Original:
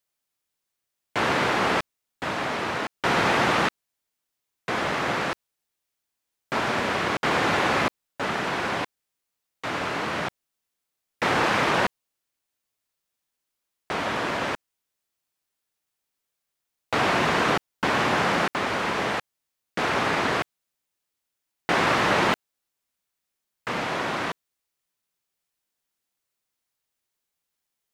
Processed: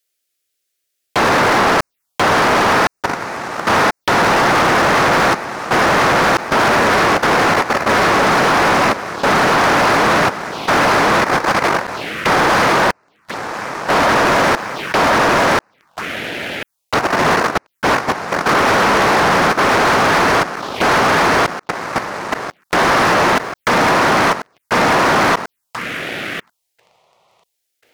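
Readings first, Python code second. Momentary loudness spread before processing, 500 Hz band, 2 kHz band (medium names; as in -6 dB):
11 LU, +13.0 dB, +12.5 dB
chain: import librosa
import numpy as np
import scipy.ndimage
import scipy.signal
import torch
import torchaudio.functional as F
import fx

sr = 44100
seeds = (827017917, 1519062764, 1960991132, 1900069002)

p1 = x + fx.echo_feedback(x, sr, ms=1039, feedback_pct=31, wet_db=-6, dry=0)
p2 = fx.over_compress(p1, sr, threshold_db=-29.0, ratio=-1.0)
p3 = fx.env_phaser(p2, sr, low_hz=160.0, high_hz=3300.0, full_db=-32.0)
p4 = fx.level_steps(p3, sr, step_db=17)
p5 = fx.leveller(p4, sr, passes=3)
p6 = fx.low_shelf(p5, sr, hz=470.0, db=-7.0)
p7 = fx.fold_sine(p6, sr, drive_db=5, ceiling_db=-19.0)
p8 = fx.dynamic_eq(p7, sr, hz=7700.0, q=2.0, threshold_db=-51.0, ratio=4.0, max_db=-6)
y = p8 * 10.0 ** (9.0 / 20.0)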